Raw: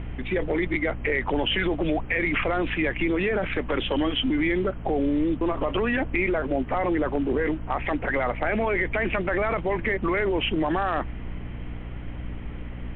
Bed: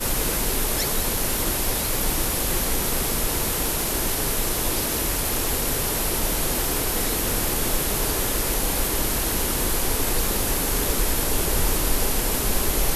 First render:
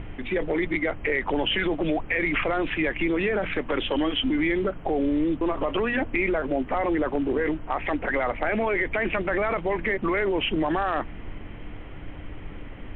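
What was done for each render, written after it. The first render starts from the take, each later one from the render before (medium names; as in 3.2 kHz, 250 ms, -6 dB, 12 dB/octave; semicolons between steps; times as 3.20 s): hum notches 60/120/180/240 Hz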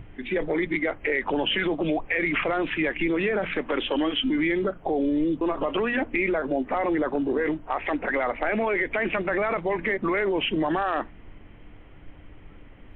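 noise print and reduce 9 dB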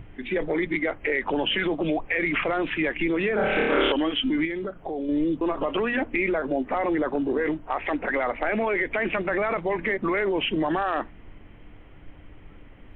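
3.35–3.92 s: flutter echo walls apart 4.8 m, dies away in 1.5 s; 4.45–5.09 s: compression 1.5:1, threshold -37 dBFS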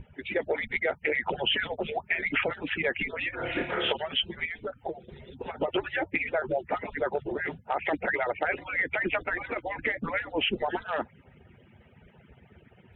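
harmonic-percussive separation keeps percussive; band-stop 1.1 kHz, Q 5.3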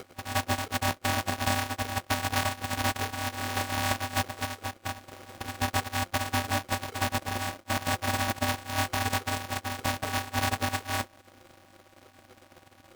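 sorted samples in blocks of 128 samples; polarity switched at an audio rate 440 Hz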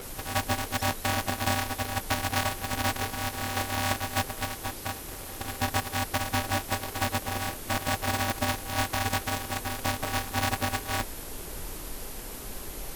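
add bed -16.5 dB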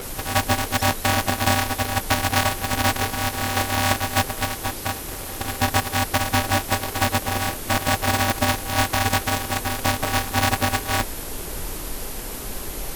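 trim +7.5 dB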